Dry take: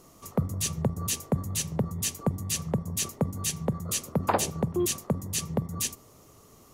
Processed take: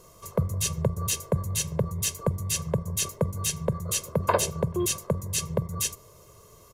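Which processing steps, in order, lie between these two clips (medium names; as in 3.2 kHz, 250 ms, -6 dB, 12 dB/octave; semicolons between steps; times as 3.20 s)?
comb 1.9 ms, depth 77%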